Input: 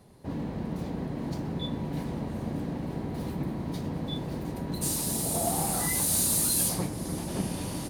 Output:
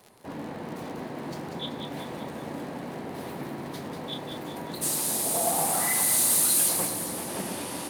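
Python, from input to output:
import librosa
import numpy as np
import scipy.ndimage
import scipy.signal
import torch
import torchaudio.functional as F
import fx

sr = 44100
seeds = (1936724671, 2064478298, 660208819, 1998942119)

y = fx.highpass(x, sr, hz=850.0, slope=6)
y = fx.peak_eq(y, sr, hz=5200.0, db=-5.5, octaves=1.6)
y = fx.dmg_crackle(y, sr, seeds[0], per_s=58.0, level_db=-42.0)
y = fx.echo_split(y, sr, split_hz=1800.0, low_ms=118, high_ms=192, feedback_pct=52, wet_db=-6.5)
y = fx.doppler_dist(y, sr, depth_ms=0.17)
y = F.gain(torch.from_numpy(y), 6.5).numpy()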